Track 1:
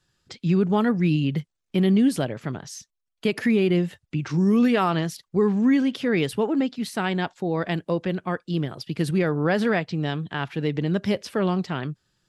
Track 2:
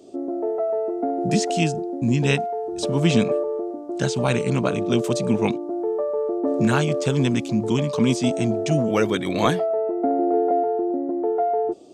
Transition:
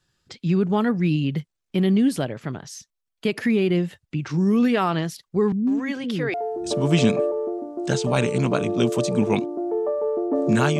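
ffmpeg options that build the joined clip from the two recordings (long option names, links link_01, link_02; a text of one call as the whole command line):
ffmpeg -i cue0.wav -i cue1.wav -filter_complex "[0:a]asettb=1/sr,asplit=3[link_01][link_02][link_03];[link_01]atrim=end=5.524[link_04];[link_02]atrim=start=5.52:end=6.34,asetpts=PTS-STARTPTS,afade=type=in:duration=0.004:curve=qsin,afade=type=out:start_time=0.816:duration=0.004:curve=qsin,acrossover=split=330[link_05][link_06];[link_06]adelay=150[link_07];[link_05][link_07]amix=inputs=2:normalize=0,atrim=end_sample=36162[link_08];[link_03]atrim=start=6.336[link_09];[link_04][link_08]acrossfade=duration=0.004:curve1=hsin:curve2=qsin[link_10];[link_10][link_09]acrossfade=duration=0.004:curve1=qsin:curve2=hsin,apad=whole_dur=10.79,atrim=end=10.79,atrim=end=6.342[link_11];[1:a]atrim=start=2.458:end=6.91[link_12];[link_11][link_12]acrossfade=duration=0.004:curve1=hsin:curve2=hsin" out.wav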